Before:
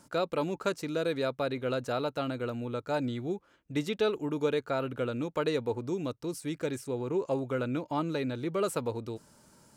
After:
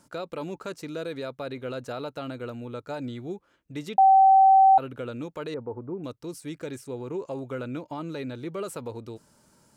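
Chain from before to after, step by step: 5.54–6.04 LPF 1400 Hz 24 dB/oct; limiter -23.5 dBFS, peak gain reduction 6 dB; 3.98–4.78 bleep 771 Hz -11 dBFS; gain -1.5 dB

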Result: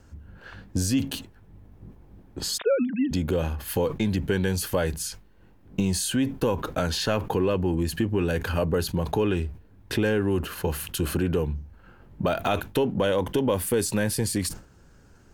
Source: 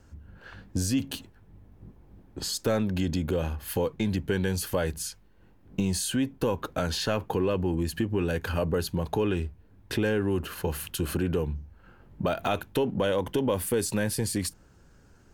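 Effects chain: 2.58–3.11 sine-wave speech; sustainer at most 140 dB/s; gain +2.5 dB

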